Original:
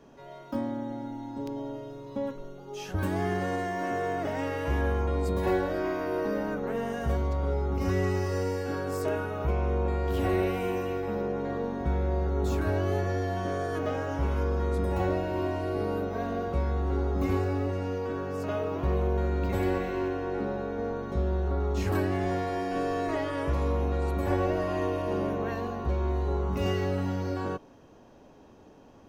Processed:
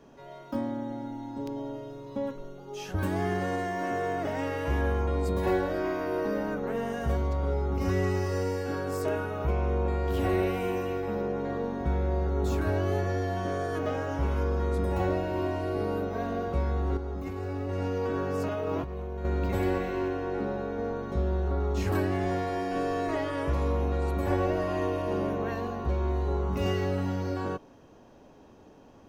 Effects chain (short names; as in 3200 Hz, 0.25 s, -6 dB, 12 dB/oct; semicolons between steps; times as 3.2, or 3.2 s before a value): 16.97–19.25 negative-ratio compressor -32 dBFS, ratio -1